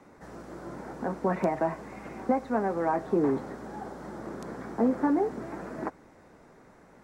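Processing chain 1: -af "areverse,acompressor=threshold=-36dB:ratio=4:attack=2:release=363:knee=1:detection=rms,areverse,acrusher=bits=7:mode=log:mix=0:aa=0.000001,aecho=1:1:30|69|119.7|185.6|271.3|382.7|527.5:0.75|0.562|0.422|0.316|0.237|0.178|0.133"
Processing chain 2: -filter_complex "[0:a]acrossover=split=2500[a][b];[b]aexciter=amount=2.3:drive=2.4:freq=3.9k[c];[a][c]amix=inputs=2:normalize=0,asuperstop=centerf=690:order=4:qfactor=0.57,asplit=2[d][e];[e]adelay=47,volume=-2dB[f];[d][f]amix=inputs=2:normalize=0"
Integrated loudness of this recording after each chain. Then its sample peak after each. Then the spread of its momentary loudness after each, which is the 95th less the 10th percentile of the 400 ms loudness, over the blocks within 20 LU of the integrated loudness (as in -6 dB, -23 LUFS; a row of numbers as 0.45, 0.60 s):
-38.5, -33.5 LUFS; -23.5, -16.0 dBFS; 12, 15 LU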